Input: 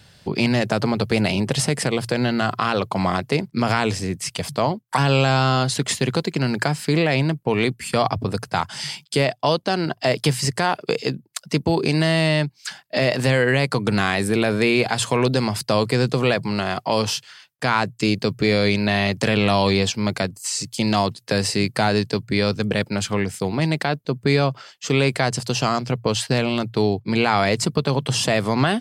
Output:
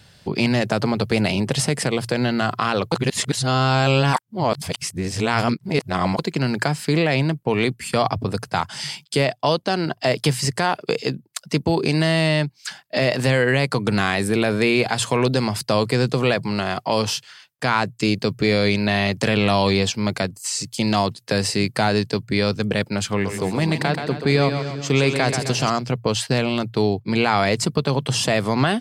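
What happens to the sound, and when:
0:02.92–0:06.19: reverse
0:23.08–0:25.70: echo with a time of its own for lows and highs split 330 Hz, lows 223 ms, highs 130 ms, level −7 dB

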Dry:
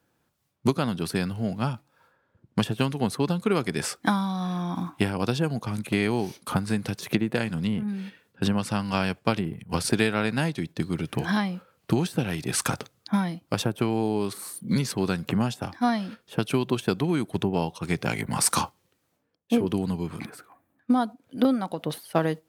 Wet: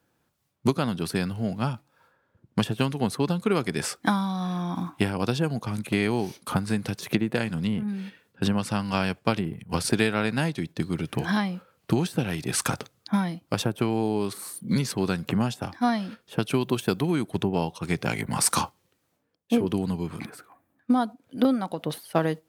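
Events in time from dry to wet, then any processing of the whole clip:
0:16.61–0:17.12: high-shelf EQ 12,000 Hz +11.5 dB

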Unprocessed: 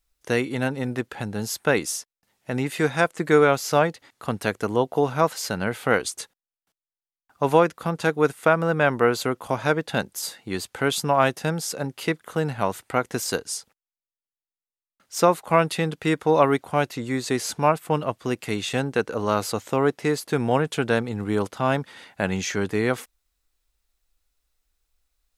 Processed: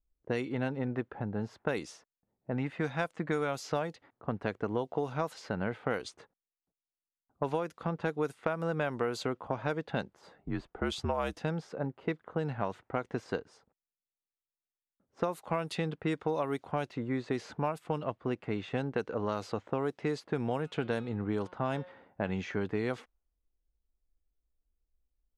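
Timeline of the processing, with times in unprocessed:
0:02.54–0:03.55: parametric band 390 Hz −8 dB 0.38 octaves
0:10.34–0:11.38: frequency shifter −60 Hz
0:20.60–0:22.29: hum removal 180.6 Hz, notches 27
whole clip: low-pass that shuts in the quiet parts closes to 440 Hz, open at −15.5 dBFS; dynamic equaliser 1,700 Hz, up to −3 dB, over −35 dBFS, Q 1; downward compressor 10 to 1, threshold −23 dBFS; level −4.5 dB

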